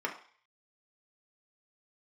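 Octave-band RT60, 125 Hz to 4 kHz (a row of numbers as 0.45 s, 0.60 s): 0.25 s, 0.35 s, 0.40 s, 0.50 s, 0.60 s, 0.60 s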